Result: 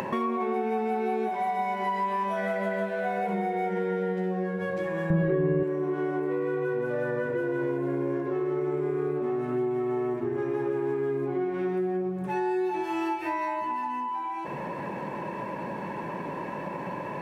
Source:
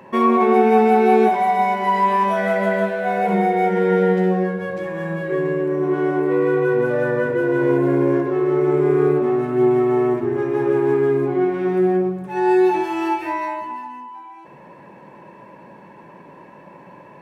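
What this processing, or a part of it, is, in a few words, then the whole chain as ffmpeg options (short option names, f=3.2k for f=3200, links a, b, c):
upward and downward compression: -filter_complex "[0:a]acompressor=mode=upward:threshold=-21dB:ratio=2.5,acompressor=threshold=-24dB:ratio=6,asettb=1/sr,asplit=3[a][b][c];[a]atrim=end=5.104[d];[b]atrim=start=5.1:end=5.63,asetpts=PTS-STARTPTS,afade=t=in:d=0.004:c=qsin,afade=t=out:st=0.526:d=0.004:c=qsin,aemphasis=mode=reproduction:type=riaa[e];[c]atrim=start=5.626[f];[d][e]acrossfade=d=0.004:c1=hsin:c2=qsin[g];[g][f]acrossfade=d=0.004:c1=qsin:c2=hsin,volume=-2dB"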